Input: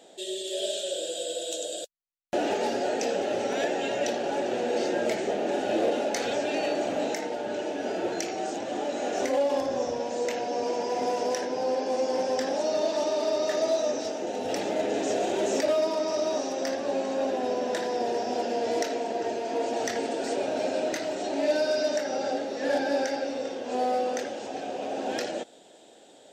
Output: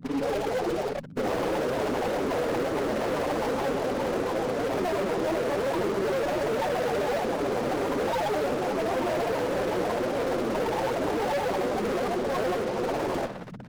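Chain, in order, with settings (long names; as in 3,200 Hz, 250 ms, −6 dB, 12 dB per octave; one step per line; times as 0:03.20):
granular cloud, pitch spread up and down by 7 semitones
octave-band graphic EQ 125/250/500/1,000/2,000/4,000/8,000 Hz −4/+8/+10/+6/−5/+6/+10 dB
flanger 0.56 Hz, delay 6.7 ms, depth 4.1 ms, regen −27%
low-shelf EQ 340 Hz +9.5 dB
mains-hum notches 60/120/180/240 Hz
spring reverb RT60 3.1 s, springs 58 ms, chirp 70 ms, DRR 13 dB
auto-filter low-pass saw down 8.9 Hz 450–4,300 Hz
fuzz pedal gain 31 dB, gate −35 dBFS
brickwall limiter −23.5 dBFS, peak gain reduction 12 dB
noise in a band 110–250 Hz −42 dBFS
phase-vocoder stretch with locked phases 0.52×
windowed peak hold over 9 samples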